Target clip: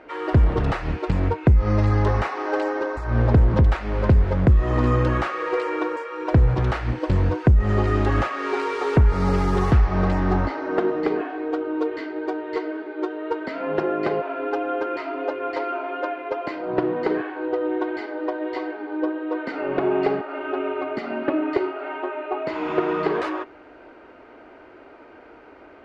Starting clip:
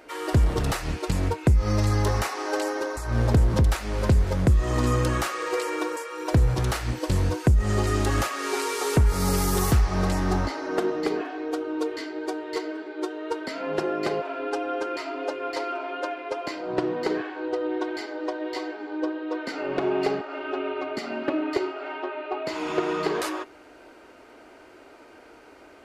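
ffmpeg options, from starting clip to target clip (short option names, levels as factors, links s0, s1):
-af "lowpass=2300,volume=1.5"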